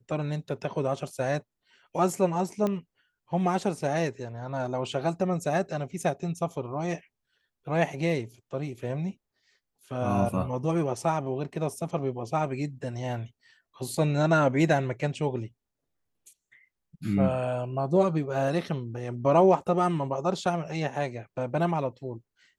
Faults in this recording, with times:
2.67 pop -17 dBFS

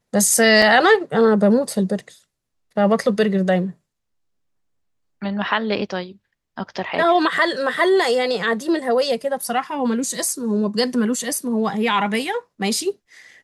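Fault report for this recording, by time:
0.62 gap 3.1 ms

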